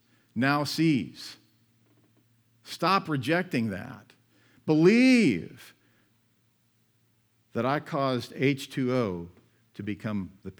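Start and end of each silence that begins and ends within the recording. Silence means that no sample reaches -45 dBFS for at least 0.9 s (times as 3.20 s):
1.36–2.66 s
5.71–7.55 s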